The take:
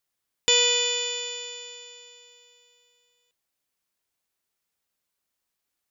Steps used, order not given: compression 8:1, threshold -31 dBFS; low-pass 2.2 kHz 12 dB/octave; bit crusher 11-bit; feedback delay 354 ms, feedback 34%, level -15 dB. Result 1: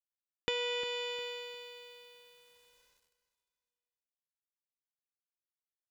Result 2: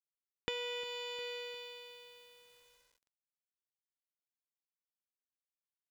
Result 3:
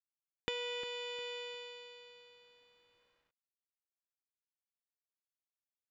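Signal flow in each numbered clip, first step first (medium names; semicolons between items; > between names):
low-pass > bit crusher > compression > feedback delay; feedback delay > compression > low-pass > bit crusher; compression > feedback delay > bit crusher > low-pass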